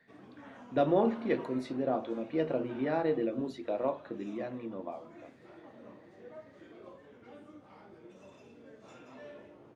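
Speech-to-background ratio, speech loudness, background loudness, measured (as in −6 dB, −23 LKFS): 19.5 dB, −33.0 LKFS, −52.5 LKFS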